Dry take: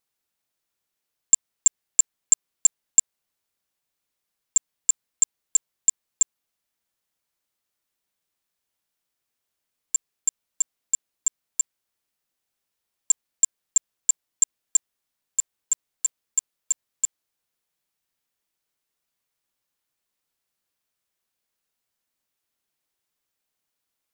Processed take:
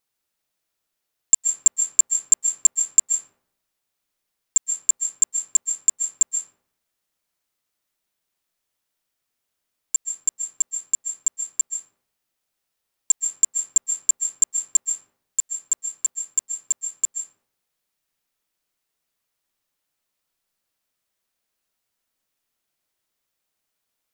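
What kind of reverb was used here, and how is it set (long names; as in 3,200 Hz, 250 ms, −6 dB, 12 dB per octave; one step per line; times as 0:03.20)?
comb and all-pass reverb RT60 0.7 s, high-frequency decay 0.5×, pre-delay 105 ms, DRR 5 dB
level +1.5 dB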